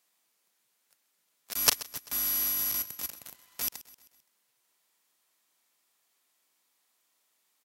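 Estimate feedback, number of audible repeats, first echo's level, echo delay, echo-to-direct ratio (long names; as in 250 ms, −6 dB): 52%, 3, −18.0 dB, 130 ms, −16.5 dB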